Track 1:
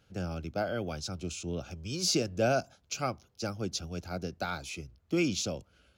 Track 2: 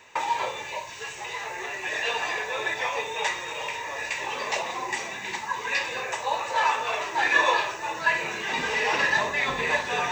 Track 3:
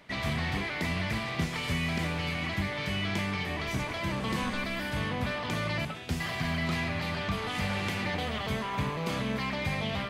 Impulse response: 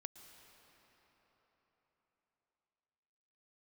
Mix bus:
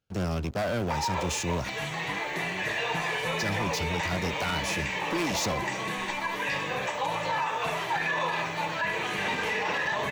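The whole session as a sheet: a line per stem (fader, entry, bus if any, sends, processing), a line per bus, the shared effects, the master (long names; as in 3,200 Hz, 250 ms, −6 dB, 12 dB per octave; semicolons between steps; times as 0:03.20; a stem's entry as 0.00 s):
−7.5 dB, 0.00 s, muted 0:01.70–0:03.17, no send, leveller curve on the samples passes 5
0.0 dB, 0.75 s, no send, parametric band 8,300 Hz −5.5 dB 2.8 octaves
−3.5 dB, 1.55 s, no send, low-shelf EQ 210 Hz −10.5 dB; notch filter 5,000 Hz, Q 6.1; comb filter 6.4 ms, depth 95%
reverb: not used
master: brickwall limiter −20 dBFS, peak gain reduction 10 dB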